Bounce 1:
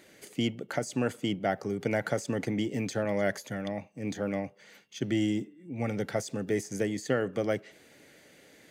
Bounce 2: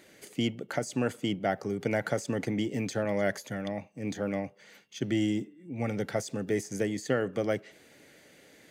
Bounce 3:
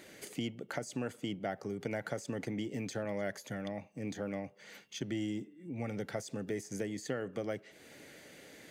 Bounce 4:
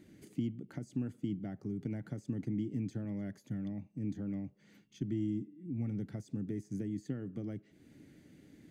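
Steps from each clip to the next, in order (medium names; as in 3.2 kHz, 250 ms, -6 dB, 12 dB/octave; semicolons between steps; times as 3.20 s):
no audible change
compression 2:1, threshold -45 dBFS, peak gain reduction 12.5 dB; trim +2.5 dB
FFT filter 110 Hz 0 dB, 310 Hz -3 dB, 500 Hz -20 dB; trim +5 dB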